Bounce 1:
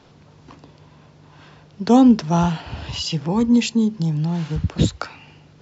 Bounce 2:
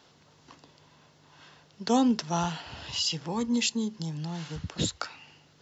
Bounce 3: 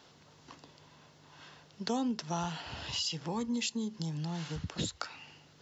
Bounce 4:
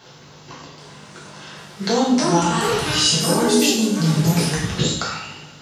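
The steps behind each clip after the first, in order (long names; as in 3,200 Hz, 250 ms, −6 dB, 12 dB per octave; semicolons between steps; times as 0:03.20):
spectral tilt +2.5 dB per octave; notch filter 2,400 Hz, Q 15; level −7 dB
downward compressor 2.5 to 1, threshold −34 dBFS, peak gain reduction 10.5 dB
delay with pitch and tempo change per echo 779 ms, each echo +5 semitones, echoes 2; coupled-rooms reverb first 0.72 s, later 2.2 s, from −18 dB, DRR −6.5 dB; level +8.5 dB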